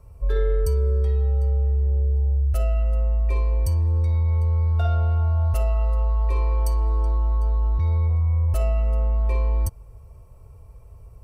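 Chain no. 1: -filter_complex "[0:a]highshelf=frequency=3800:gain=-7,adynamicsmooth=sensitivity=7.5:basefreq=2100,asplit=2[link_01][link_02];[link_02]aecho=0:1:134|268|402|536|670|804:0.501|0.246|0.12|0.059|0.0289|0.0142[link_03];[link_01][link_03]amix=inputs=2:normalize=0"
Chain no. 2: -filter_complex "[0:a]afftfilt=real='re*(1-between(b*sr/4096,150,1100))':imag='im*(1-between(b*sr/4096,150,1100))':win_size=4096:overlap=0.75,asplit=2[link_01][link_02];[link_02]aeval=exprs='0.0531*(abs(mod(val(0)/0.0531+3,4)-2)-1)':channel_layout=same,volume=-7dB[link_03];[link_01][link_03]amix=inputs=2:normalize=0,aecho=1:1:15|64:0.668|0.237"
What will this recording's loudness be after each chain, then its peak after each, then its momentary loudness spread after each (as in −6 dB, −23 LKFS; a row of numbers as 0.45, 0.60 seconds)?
−20.5, −21.0 LKFS; −9.0, −11.5 dBFS; 10, 3 LU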